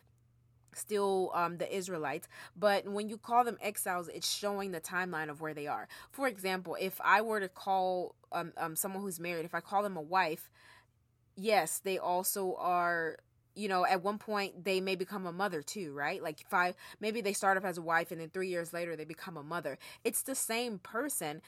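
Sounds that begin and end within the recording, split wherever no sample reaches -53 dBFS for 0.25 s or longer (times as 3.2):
0.68–10.78
11.37–13.19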